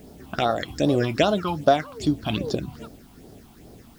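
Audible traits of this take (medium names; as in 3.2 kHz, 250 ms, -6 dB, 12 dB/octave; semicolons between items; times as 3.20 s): phasing stages 6, 2.5 Hz, lowest notch 450–2400 Hz; a quantiser's noise floor 10-bit, dither triangular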